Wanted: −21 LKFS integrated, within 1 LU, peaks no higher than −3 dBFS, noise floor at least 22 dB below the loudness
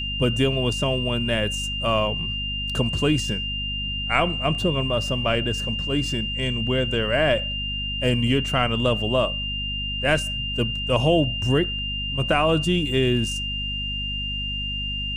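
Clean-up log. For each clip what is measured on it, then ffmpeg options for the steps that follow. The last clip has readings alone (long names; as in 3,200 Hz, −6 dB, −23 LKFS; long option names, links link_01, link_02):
mains hum 50 Hz; hum harmonics up to 250 Hz; level of the hum −30 dBFS; interfering tone 2,800 Hz; level of the tone −27 dBFS; integrated loudness −23.0 LKFS; sample peak −4.0 dBFS; target loudness −21.0 LKFS
→ -af "bandreject=frequency=50:width_type=h:width=4,bandreject=frequency=100:width_type=h:width=4,bandreject=frequency=150:width_type=h:width=4,bandreject=frequency=200:width_type=h:width=4,bandreject=frequency=250:width_type=h:width=4"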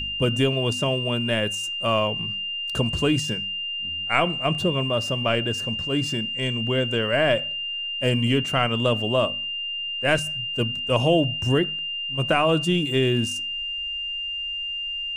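mains hum none found; interfering tone 2,800 Hz; level of the tone −27 dBFS
→ -af "bandreject=frequency=2800:width=30"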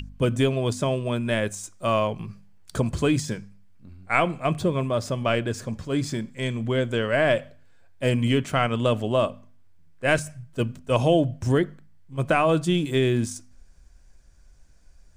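interfering tone none found; integrated loudness −24.5 LKFS; sample peak −5.5 dBFS; target loudness −21.0 LKFS
→ -af "volume=3.5dB,alimiter=limit=-3dB:level=0:latency=1"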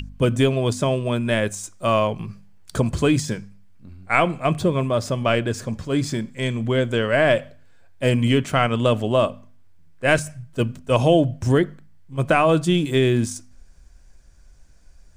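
integrated loudness −21.0 LKFS; sample peak −3.0 dBFS; background noise floor −48 dBFS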